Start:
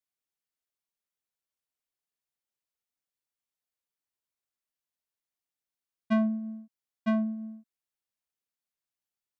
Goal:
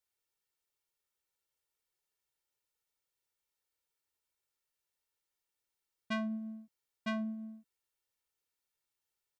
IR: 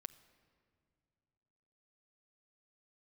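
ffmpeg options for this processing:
-filter_complex "[0:a]aecho=1:1:2.2:0.59,acrossover=split=990[s0][s1];[s0]alimiter=level_in=3.76:limit=0.0631:level=0:latency=1,volume=0.266[s2];[s2][s1]amix=inputs=2:normalize=0,volume=1.26"

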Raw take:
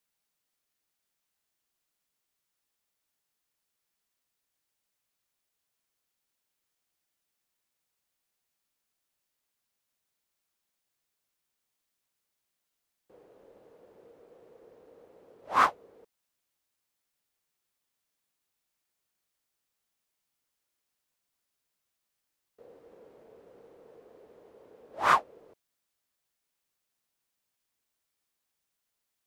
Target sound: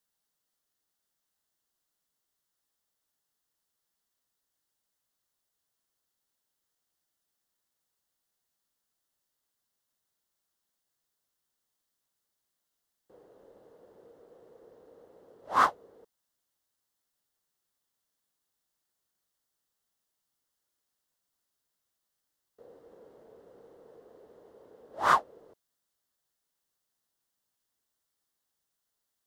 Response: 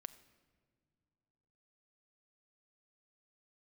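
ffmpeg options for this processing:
-af "equalizer=f=2400:t=o:w=0.35:g=-10.5"

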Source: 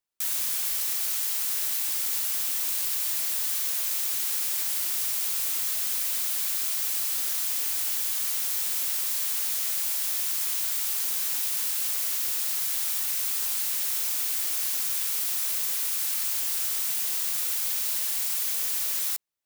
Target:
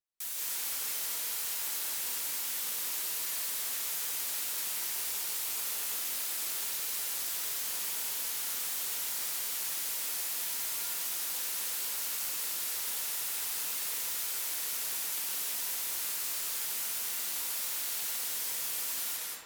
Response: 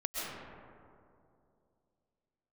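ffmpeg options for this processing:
-filter_complex "[1:a]atrim=start_sample=2205,afade=t=out:st=0.4:d=0.01,atrim=end_sample=18081,asetrate=32634,aresample=44100[s0];[0:a][s0]afir=irnorm=-1:irlink=0,volume=0.398"

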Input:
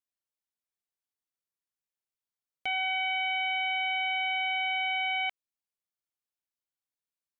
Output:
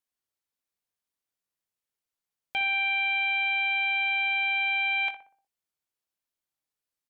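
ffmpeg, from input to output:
-filter_complex "[0:a]asplit=2[s0][s1];[s1]adelay=22,volume=0.299[s2];[s0][s2]amix=inputs=2:normalize=0,asplit=2[s3][s4];[s4]adelay=63,lowpass=f=1100:p=1,volume=0.473,asplit=2[s5][s6];[s6]adelay=63,lowpass=f=1100:p=1,volume=0.52,asplit=2[s7][s8];[s8]adelay=63,lowpass=f=1100:p=1,volume=0.52,asplit=2[s9][s10];[s10]adelay=63,lowpass=f=1100:p=1,volume=0.52,asplit=2[s11][s12];[s12]adelay=63,lowpass=f=1100:p=1,volume=0.52,asplit=2[s13][s14];[s14]adelay=63,lowpass=f=1100:p=1,volume=0.52[s15];[s3][s5][s7][s9][s11][s13][s15]amix=inputs=7:normalize=0,asetrate=45938,aresample=44100,volume=1.41"

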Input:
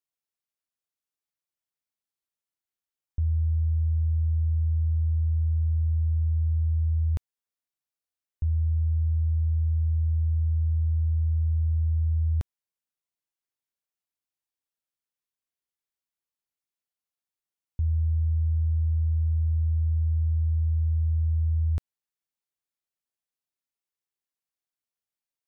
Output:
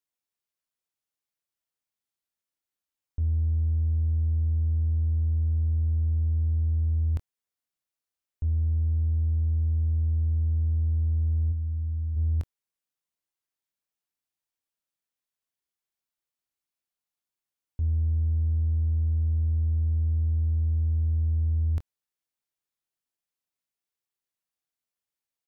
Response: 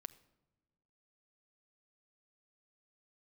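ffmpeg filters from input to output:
-filter_complex "[0:a]asplit=3[s0][s1][s2];[s0]afade=t=out:st=11.51:d=0.02[s3];[s1]highpass=f=130:p=1,afade=t=in:st=11.51:d=0.02,afade=t=out:st=12.15:d=0.02[s4];[s2]afade=t=in:st=12.15:d=0.02[s5];[s3][s4][s5]amix=inputs=3:normalize=0,asplit=2[s6][s7];[s7]asoftclip=type=tanh:threshold=0.0266,volume=0.631[s8];[s6][s8]amix=inputs=2:normalize=0,asplit=2[s9][s10];[s10]adelay=24,volume=0.266[s11];[s9][s11]amix=inputs=2:normalize=0,volume=0.631"

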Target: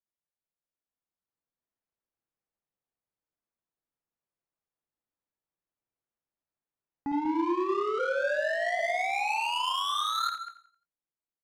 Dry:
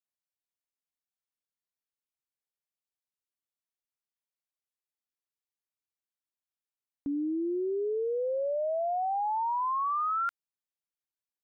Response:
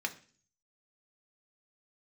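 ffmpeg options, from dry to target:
-filter_complex "[0:a]dynaudnorm=f=180:g=13:m=2.11,aeval=exprs='0.0531*(abs(mod(val(0)/0.0531+3,4)-2)-1)':c=same,asplit=2[s0][s1];[s1]aecho=0:1:52|58|193|213:0.376|0.447|0.422|0.211[s2];[s0][s2]amix=inputs=2:normalize=0,adynamicsmooth=sensitivity=4.5:basefreq=1400,asplit=3[s3][s4][s5];[s3]afade=t=out:st=7.98:d=0.02[s6];[s4]afreqshift=67,afade=t=in:st=7.98:d=0.02,afade=t=out:st=8.78:d=0.02[s7];[s5]afade=t=in:st=8.78:d=0.02[s8];[s6][s7][s8]amix=inputs=3:normalize=0,asplit=2[s9][s10];[s10]aecho=0:1:87|174|261|348:0.2|0.0758|0.0288|0.0109[s11];[s9][s11]amix=inputs=2:normalize=0"

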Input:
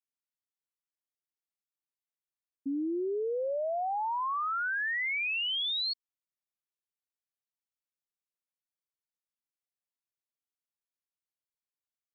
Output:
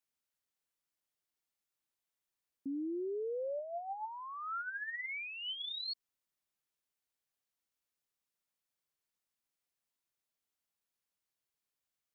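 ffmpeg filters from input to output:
-filter_complex "[0:a]alimiter=level_in=5.62:limit=0.0631:level=0:latency=1,volume=0.178,asettb=1/sr,asplit=3[s0][s1][s2];[s0]atrim=end=3.594[s3];[s1]atrim=start=3.59:end=5.88,asetpts=PTS-STARTPTS,afade=t=in:d=0.004:c=qsin,afade=t=out:st=2.286:d=0.004:c=qsin,flanger=delay=3.5:depth=2.5:regen=39:speed=1:shape=triangular[s4];[s2]atrim=start=5.876[s5];[s3][s4]acrossfade=d=0.004:c1=hsin:c2=qsin[s6];[s6][s5]acrossfade=d=0.004:c1=qsin:c2=hsin,volume=1.68"

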